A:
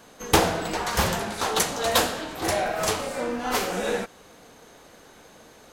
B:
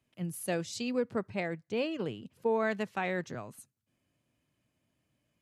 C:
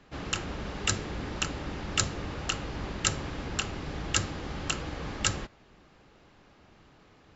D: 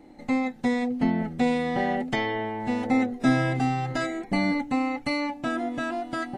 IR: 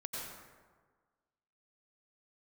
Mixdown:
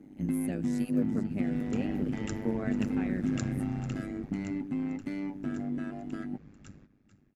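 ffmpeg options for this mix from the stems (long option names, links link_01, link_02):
-filter_complex "[0:a]acompressor=threshold=-31dB:ratio=6,volume=-17dB[link_01];[1:a]equalizer=frequency=9300:width=1.2:gain=7.5,volume=-2dB,asplit=2[link_02][link_03];[link_03]volume=-12dB[link_04];[2:a]bandreject=frequency=3000:width=9.6,adelay=1400,volume=-6.5dB,afade=type=out:start_time=3.93:duration=0.48:silence=0.251189,asplit=2[link_05][link_06];[link_06]volume=-12.5dB[link_07];[3:a]volume=-3.5dB[link_08];[link_01][link_08]amix=inputs=2:normalize=0,asoftclip=type=tanh:threshold=-29dB,acompressor=threshold=-34dB:ratio=6,volume=0dB[link_09];[link_04][link_07]amix=inputs=2:normalize=0,aecho=0:1:444:1[link_10];[link_02][link_05][link_09][link_10]amix=inputs=4:normalize=0,tremolo=f=100:d=0.857,equalizer=frequency=125:width_type=o:width=1:gain=6,equalizer=frequency=250:width_type=o:width=1:gain=11,equalizer=frequency=500:width_type=o:width=1:gain=-4,equalizer=frequency=1000:width_type=o:width=1:gain=-8,equalizer=frequency=4000:width_type=o:width=1:gain=-10,equalizer=frequency=8000:width_type=o:width=1:gain=-6"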